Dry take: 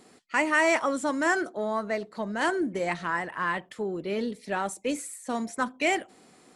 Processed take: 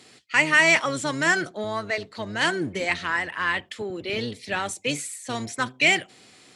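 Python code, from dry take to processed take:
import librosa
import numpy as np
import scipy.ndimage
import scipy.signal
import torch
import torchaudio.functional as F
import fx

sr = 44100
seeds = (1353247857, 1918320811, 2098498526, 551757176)

y = fx.octave_divider(x, sr, octaves=1, level_db=0.0)
y = fx.weighting(y, sr, curve='D')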